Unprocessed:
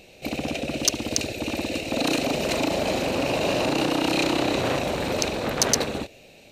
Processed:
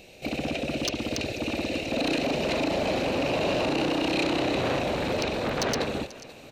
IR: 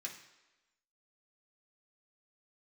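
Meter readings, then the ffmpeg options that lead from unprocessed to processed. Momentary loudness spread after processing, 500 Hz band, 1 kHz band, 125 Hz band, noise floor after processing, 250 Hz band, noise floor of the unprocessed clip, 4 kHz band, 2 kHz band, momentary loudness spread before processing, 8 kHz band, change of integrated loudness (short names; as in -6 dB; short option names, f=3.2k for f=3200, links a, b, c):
5 LU, -1.5 dB, -2.5 dB, -1.5 dB, -47 dBFS, -2.0 dB, -50 dBFS, -4.0 dB, -2.0 dB, 7 LU, -12.0 dB, -2.5 dB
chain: -filter_complex "[0:a]aecho=1:1:488|976|1464|1952:0.0794|0.0437|0.024|0.0132,acrossover=split=5000[a][b];[b]acompressor=threshold=-50dB:ratio=4:attack=1:release=60[c];[a][c]amix=inputs=2:normalize=0,asoftclip=type=tanh:threshold=-18.5dB"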